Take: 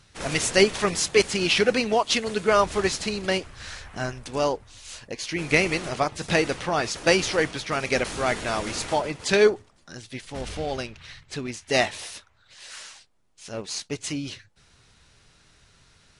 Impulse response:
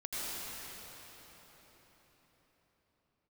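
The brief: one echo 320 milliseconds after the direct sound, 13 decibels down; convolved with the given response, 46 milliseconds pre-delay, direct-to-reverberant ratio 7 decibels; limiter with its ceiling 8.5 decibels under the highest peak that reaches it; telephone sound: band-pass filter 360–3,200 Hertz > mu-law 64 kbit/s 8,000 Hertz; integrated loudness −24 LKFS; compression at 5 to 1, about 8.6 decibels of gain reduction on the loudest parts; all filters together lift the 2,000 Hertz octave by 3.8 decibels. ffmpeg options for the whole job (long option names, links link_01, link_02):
-filter_complex "[0:a]equalizer=frequency=2000:width_type=o:gain=5.5,acompressor=threshold=-21dB:ratio=5,alimiter=limit=-16.5dB:level=0:latency=1,aecho=1:1:320:0.224,asplit=2[link_01][link_02];[1:a]atrim=start_sample=2205,adelay=46[link_03];[link_02][link_03]afir=irnorm=-1:irlink=0,volume=-11.5dB[link_04];[link_01][link_04]amix=inputs=2:normalize=0,highpass=360,lowpass=3200,volume=6.5dB" -ar 8000 -c:a pcm_mulaw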